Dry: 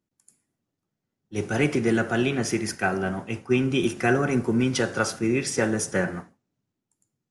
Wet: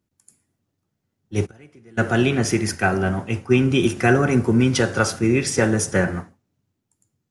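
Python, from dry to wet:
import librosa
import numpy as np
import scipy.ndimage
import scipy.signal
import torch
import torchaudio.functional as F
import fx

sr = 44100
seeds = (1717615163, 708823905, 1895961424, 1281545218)

y = fx.gate_flip(x, sr, shuts_db=-20.0, range_db=-30, at=(1.45, 1.97), fade=0.02)
y = fx.peak_eq(y, sr, hz=81.0, db=10.5, octaves=0.84)
y = F.gain(torch.from_numpy(y), 4.5).numpy()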